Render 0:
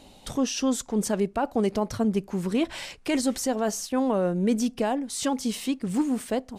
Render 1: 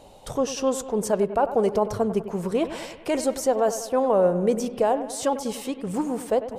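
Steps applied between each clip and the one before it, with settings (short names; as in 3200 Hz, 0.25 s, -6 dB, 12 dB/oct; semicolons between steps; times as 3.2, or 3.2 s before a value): ten-band EQ 125 Hz +4 dB, 250 Hz -7 dB, 500 Hz +8 dB, 1000 Hz +4 dB, 2000 Hz -3 dB, 4000 Hz -4 dB; on a send: analogue delay 97 ms, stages 2048, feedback 58%, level -12.5 dB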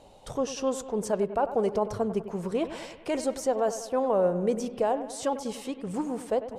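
Bessel low-pass 9500 Hz, order 2; gain -4.5 dB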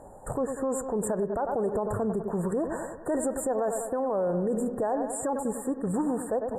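FFT band-reject 1900–7000 Hz; limiter -26.5 dBFS, peak gain reduction 11.5 dB; gain +6 dB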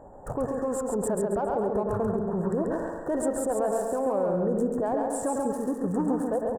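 Wiener smoothing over 9 samples; on a send: feedback echo 0.137 s, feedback 33%, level -3.5 dB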